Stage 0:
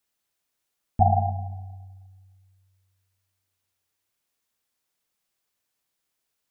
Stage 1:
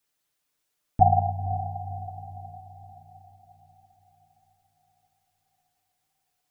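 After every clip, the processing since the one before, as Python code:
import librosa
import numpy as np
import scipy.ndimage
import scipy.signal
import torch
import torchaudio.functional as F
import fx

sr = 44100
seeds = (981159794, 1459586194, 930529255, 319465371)

y = x + 0.61 * np.pad(x, (int(6.7 * sr / 1000.0), 0))[:len(x)]
y = fx.echo_diffused(y, sr, ms=527, feedback_pct=48, wet_db=-11.5)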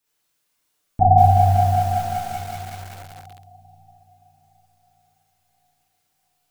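y = fx.rev_schroeder(x, sr, rt60_s=0.97, comb_ms=33, drr_db=-5.5)
y = fx.echo_crushed(y, sr, ms=188, feedback_pct=80, bits=6, wet_db=-4.5)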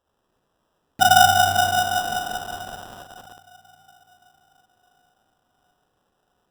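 y = scipy.signal.sosfilt(scipy.signal.butter(2, 240.0, 'highpass', fs=sr, output='sos'), x)
y = fx.sample_hold(y, sr, seeds[0], rate_hz=2200.0, jitter_pct=0)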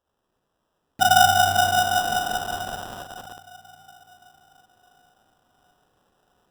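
y = fx.rider(x, sr, range_db=4, speed_s=2.0)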